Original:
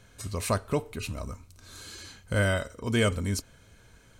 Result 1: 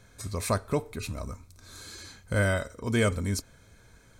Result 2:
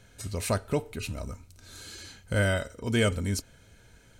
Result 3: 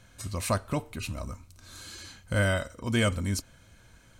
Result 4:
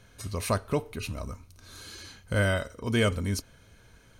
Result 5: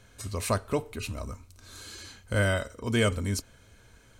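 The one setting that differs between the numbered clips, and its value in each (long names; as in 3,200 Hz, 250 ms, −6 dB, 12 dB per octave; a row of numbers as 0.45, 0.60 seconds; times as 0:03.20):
notch filter, centre frequency: 2,900, 1,100, 430, 7,600, 160 Hertz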